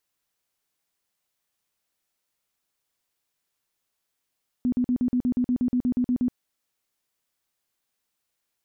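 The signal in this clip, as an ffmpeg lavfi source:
ffmpeg -f lavfi -i "aevalsrc='0.106*sin(2*PI*248*mod(t,0.12))*lt(mod(t,0.12),18/248)':duration=1.68:sample_rate=44100" out.wav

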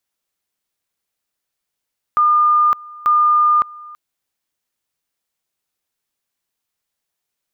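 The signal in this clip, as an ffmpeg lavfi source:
ffmpeg -f lavfi -i "aevalsrc='pow(10,(-10-23*gte(mod(t,0.89),0.56))/20)*sin(2*PI*1210*t)':duration=1.78:sample_rate=44100" out.wav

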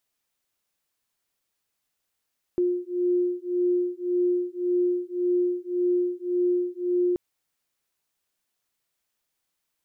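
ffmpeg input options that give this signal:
ffmpeg -f lavfi -i "aevalsrc='0.0562*(sin(2*PI*355*t)+sin(2*PI*356.8*t))':duration=4.58:sample_rate=44100" out.wav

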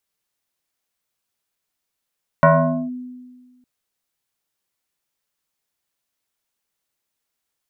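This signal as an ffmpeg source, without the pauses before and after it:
ffmpeg -f lavfi -i "aevalsrc='0.447*pow(10,-3*t/1.54)*sin(2*PI*250*t+2.8*clip(1-t/0.47,0,1)*sin(2*PI*1.64*250*t))':duration=1.21:sample_rate=44100" out.wav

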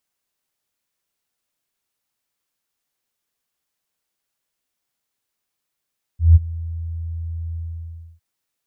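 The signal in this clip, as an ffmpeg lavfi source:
ffmpeg -f lavfi -i "aevalsrc='0.631*sin(2*PI*82.9*t)':duration=2.007:sample_rate=44100,afade=type=in:duration=0.164,afade=type=out:start_time=0.164:duration=0.028:silence=0.0944,afade=type=out:start_time=1.37:duration=0.637" out.wav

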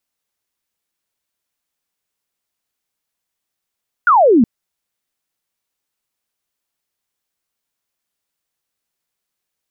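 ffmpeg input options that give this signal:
ffmpeg -f lavfi -i "aevalsrc='0.447*clip(t/0.002,0,1)*clip((0.37-t)/0.002,0,1)*sin(2*PI*1500*0.37/log(210/1500)*(exp(log(210/1500)*t/0.37)-1))':duration=0.37:sample_rate=44100" out.wav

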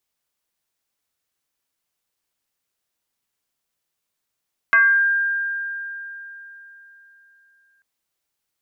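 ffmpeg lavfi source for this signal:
ffmpeg -f lavfi -i "aevalsrc='0.316*pow(10,-3*t/3.71)*sin(2*PI*1600*t+0.95*pow(10,-3*t/0.55)*sin(2*PI*0.29*1600*t))':duration=3.09:sample_rate=44100" out.wav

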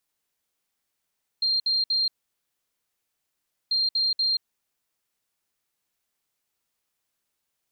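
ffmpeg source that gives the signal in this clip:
ffmpeg -f lavfi -i "aevalsrc='0.0944*sin(2*PI*4190*t)*clip(min(mod(mod(t,2.29),0.24),0.18-mod(mod(t,2.29),0.24))/0.005,0,1)*lt(mod(t,2.29),0.72)':duration=4.58:sample_rate=44100" out.wav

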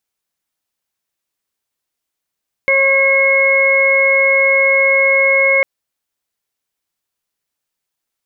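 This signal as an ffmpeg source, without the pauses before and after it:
ffmpeg -f lavfi -i "aevalsrc='0.188*sin(2*PI*543*t)+0.0562*sin(2*PI*1086*t)+0.0398*sin(2*PI*1629*t)+0.299*sin(2*PI*2172*t)':duration=2.95:sample_rate=44100" out.wav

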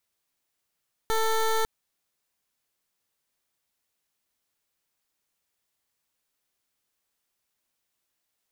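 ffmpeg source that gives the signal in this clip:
ffmpeg -f lavfi -i "aevalsrc='0.0631*(2*lt(mod(444*t,1),0.17)-1)':duration=0.55:sample_rate=44100" out.wav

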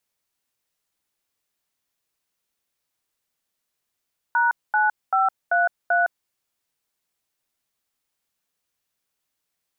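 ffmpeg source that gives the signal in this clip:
ffmpeg -f lavfi -i "aevalsrc='0.112*clip(min(mod(t,0.388),0.161-mod(t,0.388))/0.002,0,1)*(eq(floor(t/0.388),0)*(sin(2*PI*941*mod(t,0.388))+sin(2*PI*1477*mod(t,0.388)))+eq(floor(t/0.388),1)*(sin(2*PI*852*mod(t,0.388))+sin(2*PI*1477*mod(t,0.388)))+eq(floor(t/0.388),2)*(sin(2*PI*770*mod(t,0.388))+sin(2*PI*1336*mod(t,0.388)))+eq(floor(t/0.388),3)*(sin(2*PI*697*mod(t,0.388))+sin(2*PI*1477*mod(t,0.388)))+eq(floor(t/0.388),4)*(sin(2*PI*697*mod(t,0.388))+sin(2*PI*1477*mod(t,0.388))))':duration=1.94:sample_rate=44100" out.wav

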